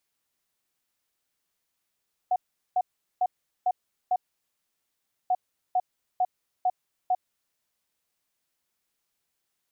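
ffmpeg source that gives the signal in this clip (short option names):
-f lavfi -i "aevalsrc='0.1*sin(2*PI*734*t)*clip(min(mod(mod(t,2.99),0.45),0.05-mod(mod(t,2.99),0.45))/0.005,0,1)*lt(mod(t,2.99),2.25)':d=5.98:s=44100"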